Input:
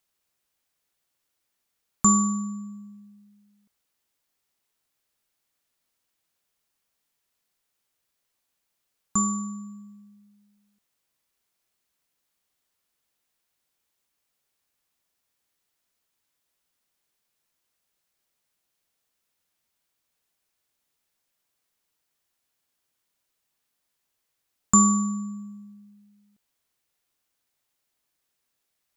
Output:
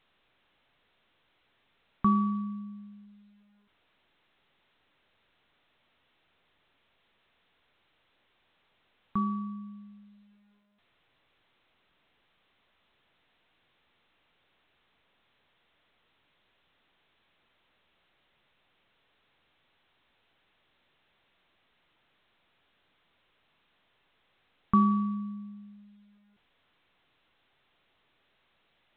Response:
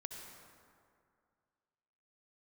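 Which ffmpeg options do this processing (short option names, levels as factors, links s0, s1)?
-af "volume=0.668" -ar 8000 -c:a pcm_alaw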